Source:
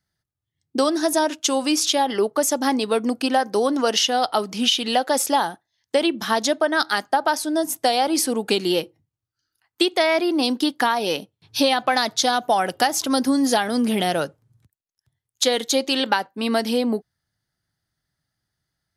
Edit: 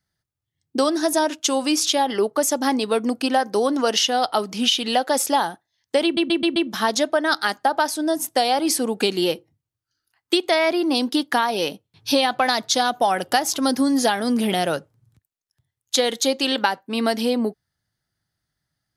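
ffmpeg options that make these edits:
ffmpeg -i in.wav -filter_complex "[0:a]asplit=5[link_01][link_02][link_03][link_04][link_05];[link_01]atrim=end=6.172[link_06];[link_02]atrim=start=6.038:end=6.172[link_07];[link_03]atrim=start=6.038:end=6.172[link_08];[link_04]atrim=start=6.038:end=6.172[link_09];[link_05]atrim=start=6.038[link_10];[link_06][link_07]acrossfade=duration=0.004:curve1=hsin:curve2=hsin[link_11];[link_11][link_08]acrossfade=duration=0.004:curve1=hsin:curve2=hsin[link_12];[link_12][link_09]acrossfade=duration=0.004:curve1=hsin:curve2=hsin[link_13];[link_13][link_10]acrossfade=duration=0.004:curve1=hsin:curve2=hsin" out.wav

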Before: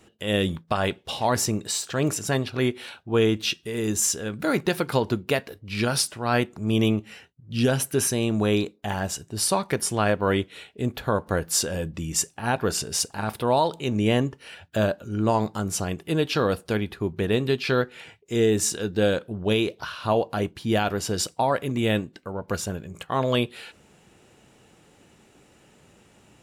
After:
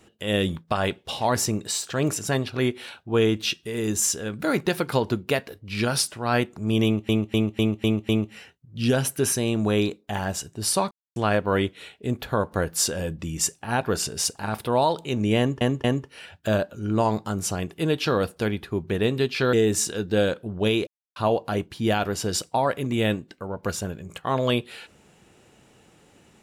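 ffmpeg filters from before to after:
ffmpeg -i in.wav -filter_complex "[0:a]asplit=13[link_01][link_02][link_03][link_04][link_05][link_06][link_07][link_08][link_09][link_10][link_11][link_12][link_13];[link_01]atrim=end=7.092[link_14];[link_02]atrim=start=6.838:end=7.092[link_15];[link_03]atrim=start=6.838:end=7.092[link_16];[link_04]atrim=start=6.838:end=7.092[link_17];[link_05]atrim=start=6.838:end=7.092[link_18];[link_06]atrim=start=6.838:end=9.66,asetpts=PTS-STARTPTS,afade=type=out:start_time=2.818:duration=0.004:curve=hsin[link_19];[link_07]atrim=start=9.66:end=9.91,asetpts=PTS-STARTPTS,volume=0[link_20];[link_08]atrim=start=9.91:end=14.362,asetpts=PTS-STARTPTS,afade=type=in:duration=0.004:curve=hsin[link_21];[link_09]atrim=start=14.128:end=14.362[link_22];[link_10]atrim=start=14.128:end=17.822[link_23];[link_11]atrim=start=18.378:end=19.72,asetpts=PTS-STARTPTS,afade=type=out:start_time=1.338:duration=0.004:curve=hsin[link_24];[link_12]atrim=start=19.72:end=20.01,asetpts=PTS-STARTPTS,volume=0[link_25];[link_13]atrim=start=20.01,asetpts=PTS-STARTPTS,afade=type=in:duration=0.004:curve=hsin[link_26];[link_14][link_15]acrossfade=duration=0.004:curve1=hsin:curve2=hsin[link_27];[link_27][link_16]acrossfade=duration=0.004:curve1=hsin:curve2=hsin[link_28];[link_28][link_17]acrossfade=duration=0.004:curve1=hsin:curve2=hsin[link_29];[link_29][link_18]acrossfade=duration=0.004:curve1=hsin:curve2=hsin[link_30];[link_19][link_20][link_21]concat=n=3:v=0:a=1[link_31];[link_30][link_31]acrossfade=duration=0.004:curve1=hsin:curve2=hsin[link_32];[link_32][link_22]acrossfade=duration=0.004:curve1=hsin:curve2=hsin[link_33];[link_33][link_23]acrossfade=duration=0.004:curve1=hsin:curve2=hsin[link_34];[link_24][link_25][link_26]concat=n=3:v=0:a=1[link_35];[link_34][link_35]acrossfade=duration=0.004:curve1=hsin:curve2=hsin" out.wav

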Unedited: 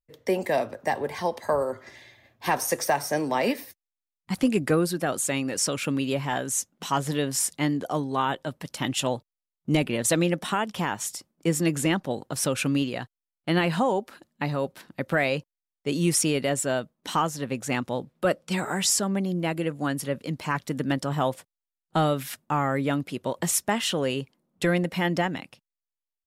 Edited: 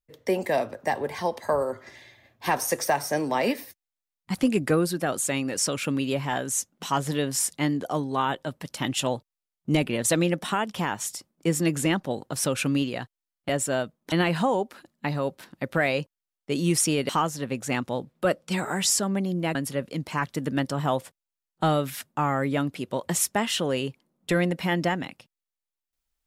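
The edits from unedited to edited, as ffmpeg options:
ffmpeg -i in.wav -filter_complex "[0:a]asplit=5[link_01][link_02][link_03][link_04][link_05];[link_01]atrim=end=13.492[link_06];[link_02]atrim=start=16.458:end=17.092[link_07];[link_03]atrim=start=13.488:end=16.462[link_08];[link_04]atrim=start=17.088:end=19.552[link_09];[link_05]atrim=start=19.878[link_10];[link_06][link_07]acrossfade=duration=0.004:curve1=hsin:curve2=hsin[link_11];[link_11][link_08]acrossfade=duration=0.004:curve1=hsin:curve2=hsin[link_12];[link_12][link_09]acrossfade=duration=0.004:curve1=hsin:curve2=hsin[link_13];[link_13][link_10]acrossfade=duration=0.004:curve1=hsin:curve2=hsin" out.wav

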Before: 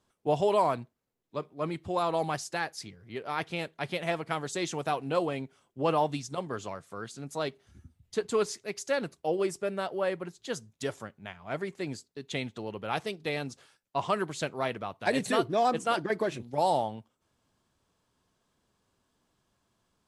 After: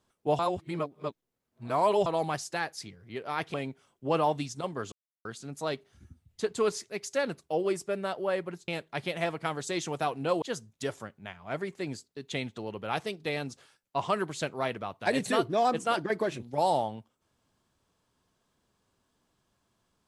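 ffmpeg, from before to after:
ffmpeg -i in.wav -filter_complex "[0:a]asplit=8[link_01][link_02][link_03][link_04][link_05][link_06][link_07][link_08];[link_01]atrim=end=0.392[link_09];[link_02]atrim=start=0.388:end=2.062,asetpts=PTS-STARTPTS,areverse[link_10];[link_03]atrim=start=2.058:end=3.542[link_11];[link_04]atrim=start=5.278:end=6.66,asetpts=PTS-STARTPTS,afade=type=out:start_time=1.378:duration=0.004:curve=hsin[link_12];[link_05]atrim=start=6.66:end=6.99,asetpts=PTS-STARTPTS,volume=0[link_13];[link_06]atrim=start=6.99:end=10.422,asetpts=PTS-STARTPTS,afade=type=in:duration=0.004:curve=hsin[link_14];[link_07]atrim=start=3.538:end=5.282[link_15];[link_08]atrim=start=10.418[link_16];[link_09][link_10]acrossfade=duration=0.004:curve1=hsin:curve2=hsin[link_17];[link_17][link_11]acrossfade=duration=0.004:curve1=hsin:curve2=hsin[link_18];[link_12][link_13][link_14]concat=n=3:v=0:a=1[link_19];[link_18][link_19]acrossfade=duration=0.004:curve1=hsin:curve2=hsin[link_20];[link_20][link_15]acrossfade=duration=0.004:curve1=hsin:curve2=hsin[link_21];[link_21][link_16]acrossfade=duration=0.004:curve1=hsin:curve2=hsin" out.wav

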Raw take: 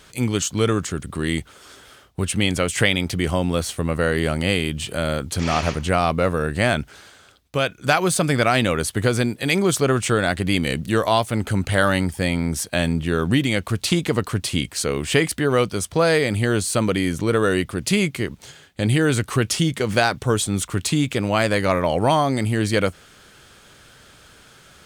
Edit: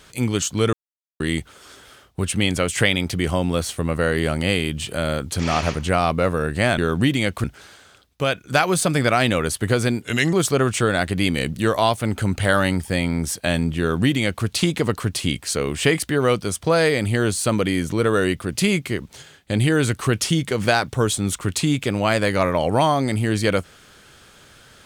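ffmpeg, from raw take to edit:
ffmpeg -i in.wav -filter_complex "[0:a]asplit=7[link_01][link_02][link_03][link_04][link_05][link_06][link_07];[link_01]atrim=end=0.73,asetpts=PTS-STARTPTS,afade=type=out:start_time=0.726:duration=0.004:curve=hsin[link_08];[link_02]atrim=start=0.73:end=1.2,asetpts=PTS-STARTPTS,volume=0[link_09];[link_03]atrim=start=1.2:end=6.782,asetpts=PTS-STARTPTS,afade=type=in:duration=0.004:curve=hsin[link_10];[link_04]atrim=start=13.078:end=13.742[link_11];[link_05]atrim=start=6.778:end=9.364[link_12];[link_06]atrim=start=9.36:end=9.62,asetpts=PTS-STARTPTS,asetrate=37044,aresample=44100[link_13];[link_07]atrim=start=9.616[link_14];[link_08][link_09][link_10]concat=n=3:v=0:a=1[link_15];[link_15][link_11]acrossfade=duration=0.004:curve1=hsin:curve2=hsin[link_16];[link_16][link_12]acrossfade=duration=0.004:curve1=hsin:curve2=hsin[link_17];[link_17][link_13]acrossfade=duration=0.004:curve1=hsin:curve2=hsin[link_18];[link_18][link_14]acrossfade=duration=0.004:curve1=hsin:curve2=hsin" out.wav

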